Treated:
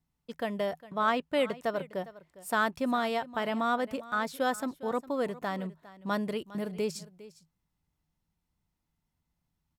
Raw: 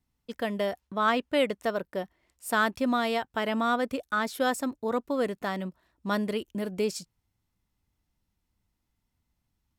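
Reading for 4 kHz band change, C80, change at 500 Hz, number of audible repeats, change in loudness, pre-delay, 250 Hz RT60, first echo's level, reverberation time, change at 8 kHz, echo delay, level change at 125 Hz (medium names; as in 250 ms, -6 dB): -4.0 dB, no reverb, -2.5 dB, 1, -2.5 dB, no reverb, no reverb, -18.0 dB, no reverb, -4.5 dB, 406 ms, -2.0 dB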